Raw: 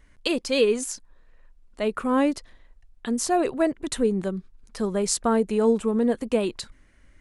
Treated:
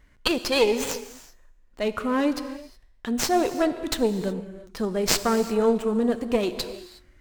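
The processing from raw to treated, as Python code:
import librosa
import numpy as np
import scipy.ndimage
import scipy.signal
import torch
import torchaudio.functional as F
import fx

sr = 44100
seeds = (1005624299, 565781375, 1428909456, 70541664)

y = fx.dynamic_eq(x, sr, hz=4400.0, q=1.2, threshold_db=-44.0, ratio=4.0, max_db=6)
y = fx.cheby_harmonics(y, sr, harmonics=(2,), levels_db=(-7,), full_scale_db=-7.5)
y = fx.comb_fb(y, sr, f0_hz=360.0, decay_s=0.81, harmonics='all', damping=0.0, mix_pct=50)
y = fx.rev_gated(y, sr, seeds[0], gate_ms=390, shape='flat', drr_db=10.5)
y = fx.running_max(y, sr, window=3)
y = y * 10.0 ** (5.5 / 20.0)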